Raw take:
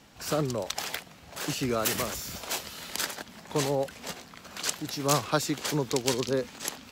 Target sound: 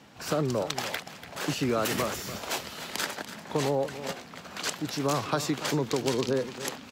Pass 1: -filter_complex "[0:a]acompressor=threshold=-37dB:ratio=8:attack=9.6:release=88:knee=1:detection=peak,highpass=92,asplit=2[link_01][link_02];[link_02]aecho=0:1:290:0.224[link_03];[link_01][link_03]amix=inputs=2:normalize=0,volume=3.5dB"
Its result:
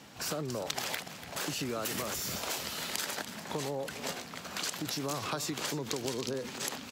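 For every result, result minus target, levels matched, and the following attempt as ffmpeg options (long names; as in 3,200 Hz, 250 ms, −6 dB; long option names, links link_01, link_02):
downward compressor: peak gain reduction +9 dB; 8,000 Hz band +4.5 dB
-filter_complex "[0:a]acompressor=threshold=-26.5dB:ratio=8:attack=9.6:release=88:knee=1:detection=peak,highpass=92,asplit=2[link_01][link_02];[link_02]aecho=0:1:290:0.224[link_03];[link_01][link_03]amix=inputs=2:normalize=0,volume=3.5dB"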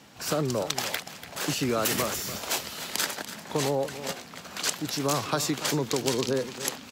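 8,000 Hz band +4.0 dB
-filter_complex "[0:a]acompressor=threshold=-26.5dB:ratio=8:attack=9.6:release=88:knee=1:detection=peak,highpass=92,highshelf=frequency=4500:gain=-8,asplit=2[link_01][link_02];[link_02]aecho=0:1:290:0.224[link_03];[link_01][link_03]amix=inputs=2:normalize=0,volume=3.5dB"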